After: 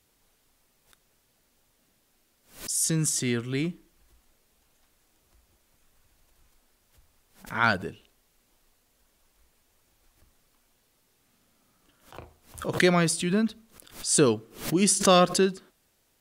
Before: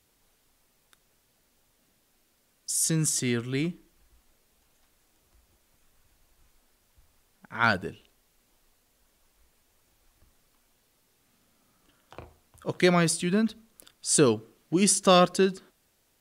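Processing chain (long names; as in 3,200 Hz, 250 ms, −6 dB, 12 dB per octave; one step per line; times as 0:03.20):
background raised ahead of every attack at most 140 dB per second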